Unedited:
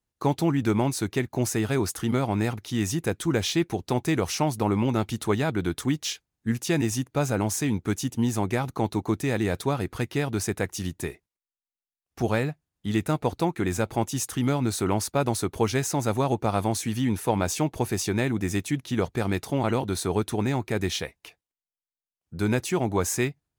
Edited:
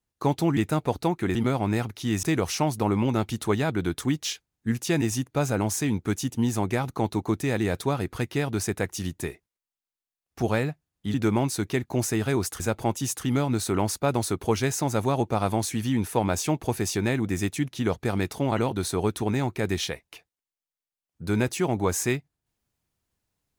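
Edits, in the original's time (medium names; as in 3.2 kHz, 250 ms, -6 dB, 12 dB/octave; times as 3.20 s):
0.57–2.03 s: swap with 12.94–13.72 s
2.91–4.03 s: delete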